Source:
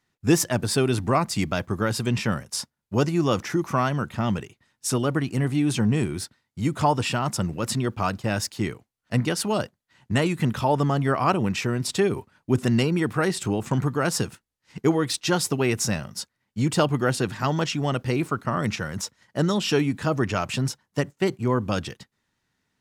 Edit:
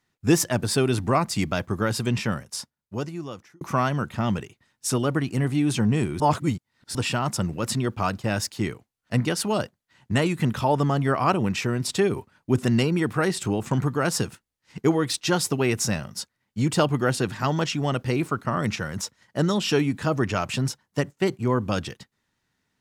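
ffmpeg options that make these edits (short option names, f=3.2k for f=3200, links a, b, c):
-filter_complex "[0:a]asplit=4[a][b][c][d];[a]atrim=end=3.61,asetpts=PTS-STARTPTS,afade=t=out:st=2.07:d=1.54[e];[b]atrim=start=3.61:end=6.202,asetpts=PTS-STARTPTS,afade=t=in:d=0.004:c=hsin[f];[c]atrim=start=6.198:end=6.952,asetpts=PTS-STARTPTS,areverse[g];[d]atrim=start=6.948[h];[e][f]concat=n=2:v=0:a=1[i];[i][g]acrossfade=d=0.004:c1=hsin:c2=hsin[j];[j][h]acrossfade=d=0.004:c1=hsin:c2=hsin"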